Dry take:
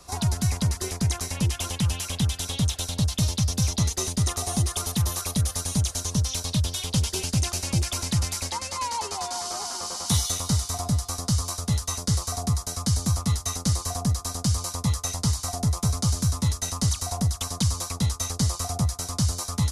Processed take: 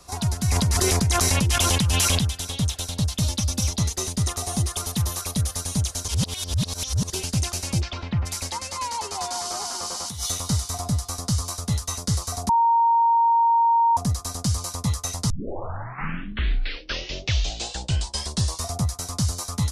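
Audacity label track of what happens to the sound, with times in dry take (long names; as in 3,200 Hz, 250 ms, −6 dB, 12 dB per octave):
0.480000	2.190000	envelope flattener amount 100%
3.240000	3.690000	comb filter 3.5 ms
6.080000	7.100000	reverse
7.800000	8.250000	low-pass filter 5,400 Hz → 2,200 Hz 24 dB per octave
9.150000	10.300000	compressor whose output falls as the input rises −28 dBFS
12.490000	13.970000	beep over 927 Hz −15 dBFS
15.300000	15.300000	tape start 3.49 s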